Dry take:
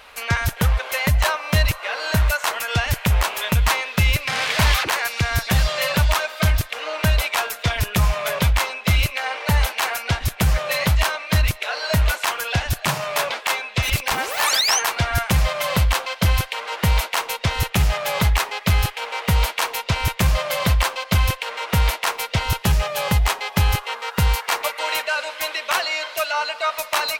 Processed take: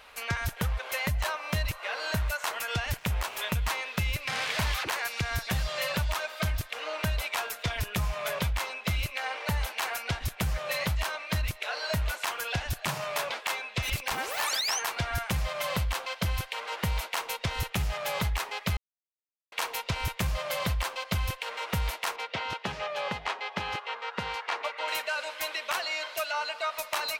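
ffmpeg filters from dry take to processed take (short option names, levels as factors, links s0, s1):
-filter_complex "[0:a]asettb=1/sr,asplit=3[s0][s1][s2];[s0]atrim=end=2.974[s3];[s1]atrim=start=2.97:end=3.39,asetpts=PTS-STARTPTS,afade=t=in:d=0.004:c=qsin,afade=t=out:st=0.416:d=0.004:c=qsin,aeval=exprs='sgn(val(0))*max(abs(val(0))-0.0126,0)':c=same[s4];[s2]atrim=start=3.386[s5];[s3][s4]acrossfade=d=0.004:c1=hsin:c2=qsin[s6];[s6][s5]acrossfade=d=0.004:c1=qsin:c2=hsin,asettb=1/sr,asplit=3[s7][s8][s9];[s7]atrim=end=22.164[s10];[s8]atrim=start=22.16:end=24.88,asetpts=PTS-STARTPTS,afade=t=in:d=0.004:c=qsin,afade=t=out:st=2.716:d=0.004:c=qsin,highpass=260,lowpass=3700[s11];[s9]atrim=start=24.876[s12];[s10][s11]acrossfade=d=0.004:c1=hsin:c2=qsin[s13];[s13][s12]acrossfade=d=0.004:c1=qsin:c2=hsin,asplit=3[s14][s15][s16];[s14]atrim=end=18.77,asetpts=PTS-STARTPTS,afade=t=out:st=18.766:d=0.004:c=hsin[s17];[s15]atrim=start=18.77:end=19.52,asetpts=PTS-STARTPTS,volume=0[s18];[s16]atrim=start=19.52,asetpts=PTS-STARTPTS,afade=t=in:d=0.004:c=hsin[s19];[s17][s18][s19]concat=n=3:v=0:a=1,acompressor=threshold=0.1:ratio=3,volume=0.447"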